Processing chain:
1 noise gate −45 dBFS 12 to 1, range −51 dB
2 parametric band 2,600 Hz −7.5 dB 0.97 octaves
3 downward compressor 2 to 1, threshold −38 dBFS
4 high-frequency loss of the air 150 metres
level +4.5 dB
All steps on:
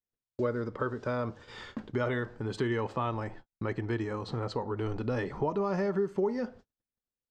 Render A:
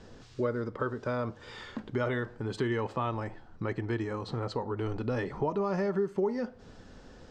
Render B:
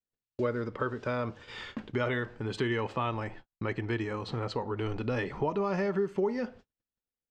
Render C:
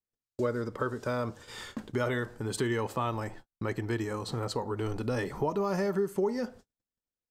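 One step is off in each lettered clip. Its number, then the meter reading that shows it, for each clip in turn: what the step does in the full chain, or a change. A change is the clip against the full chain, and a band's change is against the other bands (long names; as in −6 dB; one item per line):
1, change in momentary loudness spread +4 LU
2, 4 kHz band +4.0 dB
4, 4 kHz band +4.0 dB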